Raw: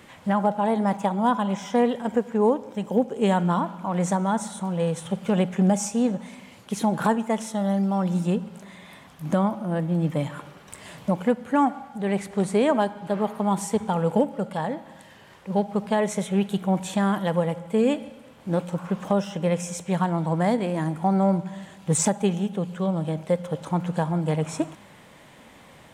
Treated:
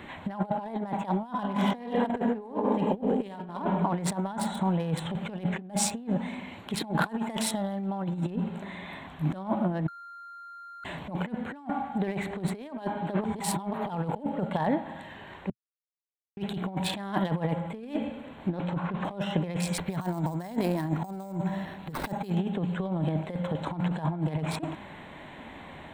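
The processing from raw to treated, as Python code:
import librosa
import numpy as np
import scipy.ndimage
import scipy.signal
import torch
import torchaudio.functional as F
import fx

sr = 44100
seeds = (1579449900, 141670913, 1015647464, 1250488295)

y = fx.reverb_throw(x, sr, start_s=1.28, length_s=2.2, rt60_s=1.9, drr_db=5.0)
y = fx.high_shelf(y, sr, hz=3000.0, db=5.5, at=(7.09, 7.87))
y = fx.lowpass(y, sr, hz=5000.0, slope=12, at=(18.48, 19.03), fade=0.02)
y = fx.resample_bad(y, sr, factor=6, down='none', up='hold', at=(19.78, 22.35))
y = fx.edit(y, sr, fx.bleep(start_s=9.88, length_s=0.96, hz=1390.0, db=-14.0),
    fx.reverse_span(start_s=13.24, length_s=0.65),
    fx.silence(start_s=15.5, length_s=0.87), tone=tone)
y = fx.wiener(y, sr, points=9)
y = fx.graphic_eq_31(y, sr, hz=(125, 200, 500, 1250, 4000, 6300), db=(-9, -4, -8, -5, 8, -10))
y = fx.over_compress(y, sr, threshold_db=-31.0, ratio=-0.5)
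y = y * 10.0 ** (2.0 / 20.0)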